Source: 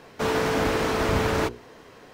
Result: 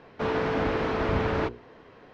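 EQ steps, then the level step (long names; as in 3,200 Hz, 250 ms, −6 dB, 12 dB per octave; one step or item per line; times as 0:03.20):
high-frequency loss of the air 240 metres
−2.0 dB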